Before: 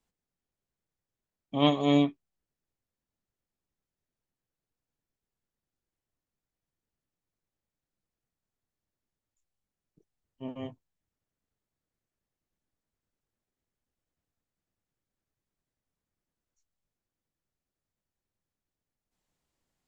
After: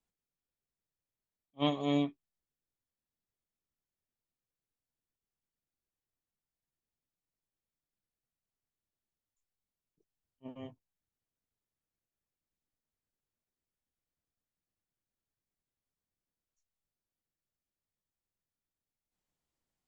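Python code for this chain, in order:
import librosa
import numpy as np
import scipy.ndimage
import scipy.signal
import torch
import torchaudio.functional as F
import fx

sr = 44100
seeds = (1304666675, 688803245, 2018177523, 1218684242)

y = fx.attack_slew(x, sr, db_per_s=550.0)
y = y * librosa.db_to_amplitude(-7.0)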